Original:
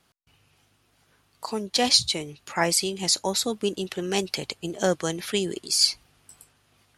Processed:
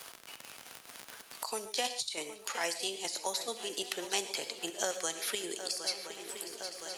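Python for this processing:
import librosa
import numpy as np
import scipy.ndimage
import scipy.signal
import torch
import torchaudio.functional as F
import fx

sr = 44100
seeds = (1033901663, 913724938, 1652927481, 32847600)

p1 = scipy.signal.sosfilt(scipy.signal.butter(2, 530.0, 'highpass', fs=sr, output='sos'), x)
p2 = fx.high_shelf(p1, sr, hz=6000.0, db=9.5)
p3 = fx.over_compress(p2, sr, threshold_db=-23.0, ratio=-0.5)
p4 = fx.chopper(p3, sr, hz=4.6, depth_pct=60, duty_pct=60)
p5 = fx.dmg_crackle(p4, sr, seeds[0], per_s=54.0, level_db=-37.0)
p6 = p5 + fx.echo_swing(p5, sr, ms=1017, ratio=3, feedback_pct=51, wet_db=-17, dry=0)
p7 = fx.rev_gated(p6, sr, seeds[1], gate_ms=160, shape='flat', drr_db=10.5)
p8 = fx.band_squash(p7, sr, depth_pct=70)
y = p8 * 10.0 ** (-8.0 / 20.0)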